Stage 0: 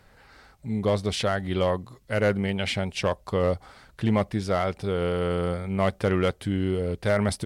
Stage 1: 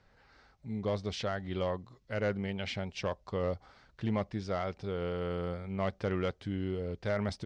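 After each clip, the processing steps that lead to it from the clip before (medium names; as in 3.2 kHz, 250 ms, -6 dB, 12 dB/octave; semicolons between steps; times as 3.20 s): Chebyshev low-pass 6 kHz, order 3; trim -9 dB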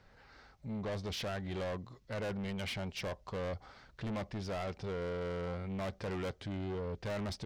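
saturation -38 dBFS, distortion -7 dB; trim +3 dB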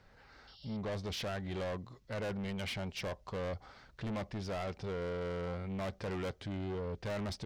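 painted sound noise, 0.47–0.77 s, 2.7–5.6 kHz -59 dBFS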